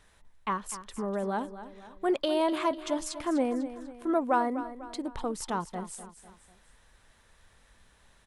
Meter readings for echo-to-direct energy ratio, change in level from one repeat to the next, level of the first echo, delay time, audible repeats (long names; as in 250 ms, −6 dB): −12.0 dB, −6.5 dB, −13.0 dB, 248 ms, 3